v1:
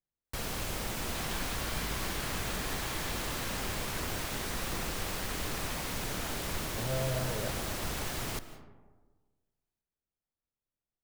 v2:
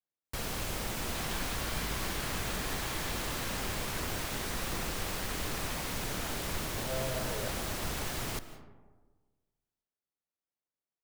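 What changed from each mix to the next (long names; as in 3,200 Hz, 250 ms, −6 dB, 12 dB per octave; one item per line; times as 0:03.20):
speech: add high-pass filter 340 Hz 6 dB per octave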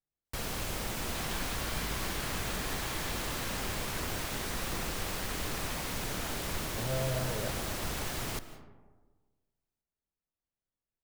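speech: remove high-pass filter 340 Hz 6 dB per octave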